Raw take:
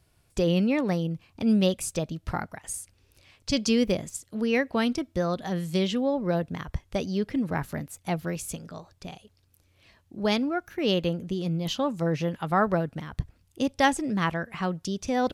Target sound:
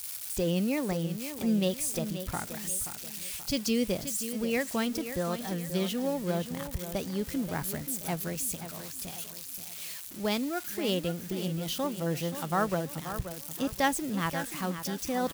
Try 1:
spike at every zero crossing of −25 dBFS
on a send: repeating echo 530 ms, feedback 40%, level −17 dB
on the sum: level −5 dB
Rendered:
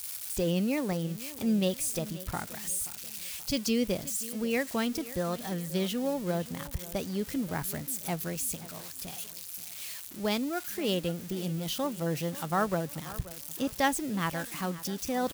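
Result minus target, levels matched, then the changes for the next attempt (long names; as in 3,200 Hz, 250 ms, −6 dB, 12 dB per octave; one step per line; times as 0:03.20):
echo-to-direct −6.5 dB
change: repeating echo 530 ms, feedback 40%, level −10.5 dB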